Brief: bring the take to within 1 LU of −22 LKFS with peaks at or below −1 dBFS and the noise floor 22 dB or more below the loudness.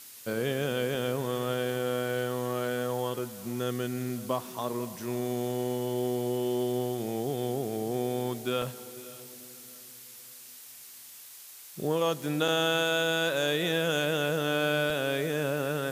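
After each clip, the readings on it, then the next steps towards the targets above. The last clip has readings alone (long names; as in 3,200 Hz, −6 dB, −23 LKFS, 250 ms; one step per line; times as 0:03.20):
number of dropouts 6; longest dropout 2.4 ms; background noise floor −48 dBFS; target noise floor −52 dBFS; integrated loudness −30.0 LKFS; sample peak −15.5 dBFS; target loudness −22.0 LKFS
→ repair the gap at 0:00.95/0:03.19/0:04.09/0:08.62/0:12.48/0:14.90, 2.4 ms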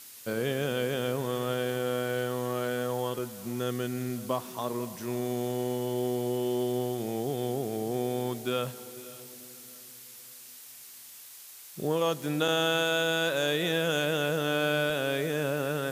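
number of dropouts 0; background noise floor −48 dBFS; target noise floor −52 dBFS
→ broadband denoise 6 dB, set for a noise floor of −48 dBFS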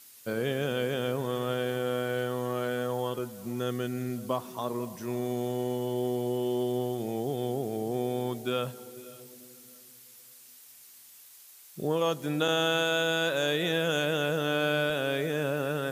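background noise floor −53 dBFS; integrated loudness −30.0 LKFS; sample peak −16.0 dBFS; target loudness −22.0 LKFS
→ level +8 dB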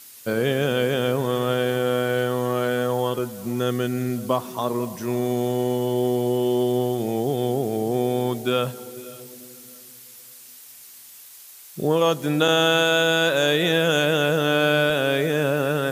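integrated loudness −22.0 LKFS; sample peak −8.0 dBFS; background noise floor −45 dBFS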